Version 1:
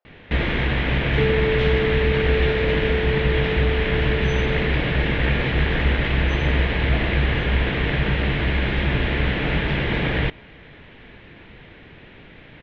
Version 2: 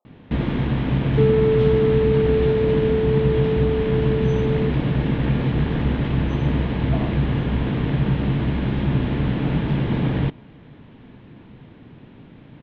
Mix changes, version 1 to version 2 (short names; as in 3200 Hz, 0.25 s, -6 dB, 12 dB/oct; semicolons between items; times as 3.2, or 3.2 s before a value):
speech: add brick-wall FIR low-pass 1300 Hz; first sound -7.0 dB; master: add ten-band EQ 125 Hz +10 dB, 250 Hz +11 dB, 1000 Hz +6 dB, 2000 Hz -7 dB